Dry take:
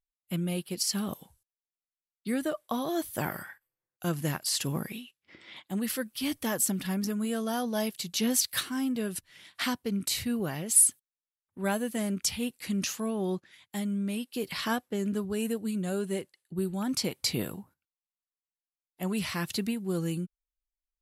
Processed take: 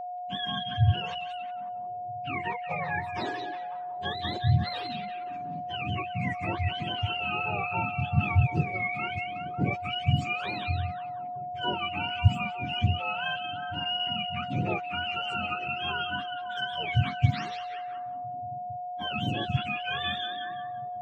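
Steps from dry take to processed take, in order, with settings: spectrum mirrored in octaves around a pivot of 760 Hz; whine 720 Hz -34 dBFS; delay with a stepping band-pass 0.182 s, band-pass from 3200 Hz, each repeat -0.7 oct, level -3.5 dB

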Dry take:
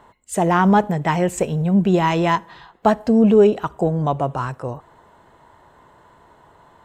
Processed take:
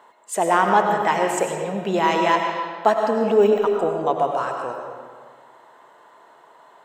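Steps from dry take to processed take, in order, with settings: HPF 430 Hz 12 dB/oct; 3.01–3.76 de-esser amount 95%; digital reverb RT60 1.8 s, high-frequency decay 0.7×, pre-delay 60 ms, DRR 2.5 dB

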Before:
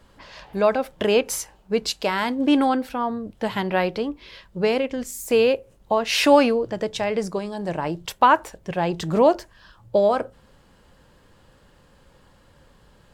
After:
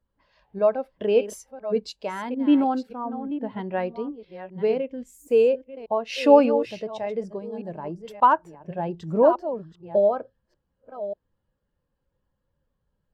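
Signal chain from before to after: reverse delay 0.586 s, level -8 dB; 2.95–3.59 high shelf 4200 Hz -10.5 dB; spectral expander 1.5:1

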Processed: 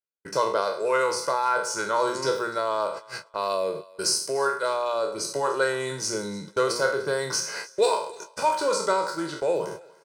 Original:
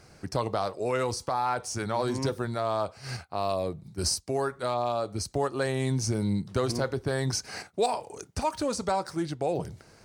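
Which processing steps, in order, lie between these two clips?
spectral trails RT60 0.54 s; HPF 190 Hz 24 dB/oct; notches 60/120/180/240/300/360/420 Hz; gate -37 dBFS, range -56 dB; bell 1300 Hz +8.5 dB 0.38 oct; comb 2 ms, depth 77%; reverse; upward compressor, threshold -31 dBFS; reverse; vibrato 0.31 Hz 19 cents; on a send: thinning echo 0.295 s, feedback 28%, high-pass 560 Hz, level -21 dB

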